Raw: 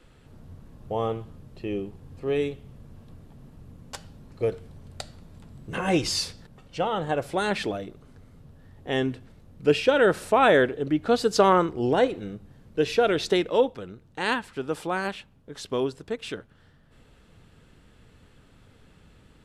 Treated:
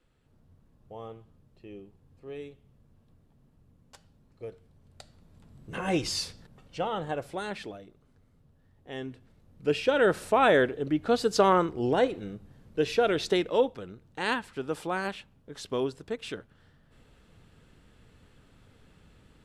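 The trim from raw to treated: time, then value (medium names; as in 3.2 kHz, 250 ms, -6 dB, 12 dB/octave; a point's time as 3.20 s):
4.73 s -15 dB
5.84 s -4.5 dB
6.96 s -4.5 dB
7.83 s -13 dB
8.90 s -13 dB
10.05 s -3 dB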